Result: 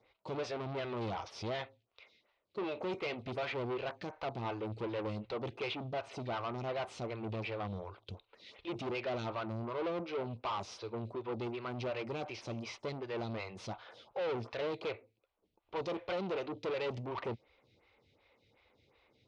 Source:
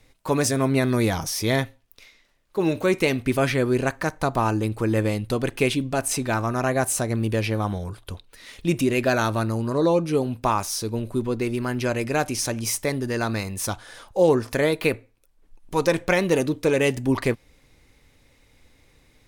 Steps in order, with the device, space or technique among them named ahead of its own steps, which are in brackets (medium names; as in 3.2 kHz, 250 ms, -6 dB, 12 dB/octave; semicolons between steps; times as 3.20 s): vibe pedal into a guitar amplifier (lamp-driven phase shifter 2.7 Hz; valve stage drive 30 dB, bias 0.35; cabinet simulation 110–4200 Hz, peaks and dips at 160 Hz -9 dB, 270 Hz -10 dB, 1.7 kHz -9 dB); trim -2 dB